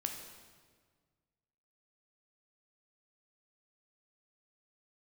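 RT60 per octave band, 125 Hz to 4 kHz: 2.2, 1.9, 1.7, 1.5, 1.4, 1.3 seconds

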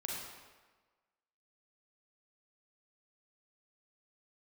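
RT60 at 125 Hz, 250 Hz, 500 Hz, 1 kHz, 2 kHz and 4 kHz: 1.2, 1.3, 1.3, 1.4, 1.2, 1.0 seconds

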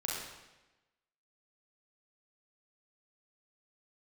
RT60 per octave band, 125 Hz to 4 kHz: 1.1, 1.1, 1.1, 1.0, 1.0, 0.95 seconds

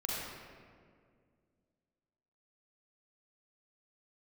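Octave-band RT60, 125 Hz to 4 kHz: 2.7, 2.8, 2.3, 1.8, 1.6, 1.1 seconds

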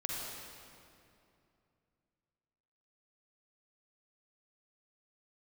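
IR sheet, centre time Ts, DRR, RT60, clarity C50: 145 ms, −3.5 dB, 2.6 s, −2.5 dB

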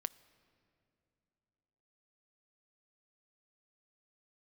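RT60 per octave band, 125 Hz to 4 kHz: 3.2, 3.2, 3.1, 2.7, 2.3, 1.7 seconds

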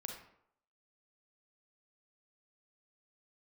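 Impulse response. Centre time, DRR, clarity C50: 32 ms, 2.0 dB, 4.0 dB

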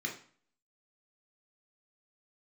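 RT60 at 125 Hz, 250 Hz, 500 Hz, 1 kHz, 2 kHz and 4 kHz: 0.50, 0.50, 0.45, 0.50, 0.45, 0.40 seconds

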